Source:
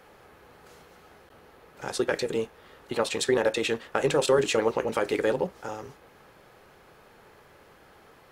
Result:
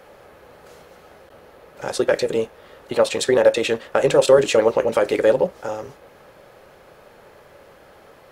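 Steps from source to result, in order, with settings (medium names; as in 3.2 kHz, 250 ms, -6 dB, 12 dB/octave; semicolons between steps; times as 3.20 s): peaking EQ 570 Hz +8.5 dB 0.41 oct; trim +4.5 dB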